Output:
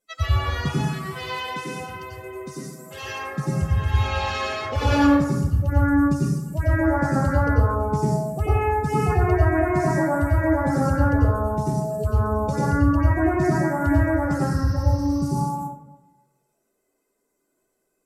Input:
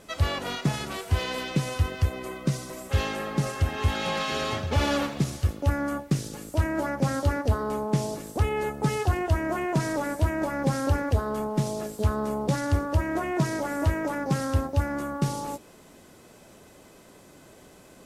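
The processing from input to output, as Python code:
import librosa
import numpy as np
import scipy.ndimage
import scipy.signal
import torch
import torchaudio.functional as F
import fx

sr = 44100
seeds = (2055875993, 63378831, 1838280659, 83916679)

y = fx.bin_expand(x, sr, power=2.0)
y = fx.highpass(y, sr, hz=350.0, slope=12, at=(0.82, 3.28))
y = fx.spec_repair(y, sr, seeds[0], start_s=14.45, length_s=0.81, low_hz=1100.0, high_hz=6300.0, source='both')
y = fx.rev_plate(y, sr, seeds[1], rt60_s=1.1, hf_ratio=0.3, predelay_ms=80, drr_db=-7.0)
y = F.gain(torch.from_numpy(y), 1.0).numpy()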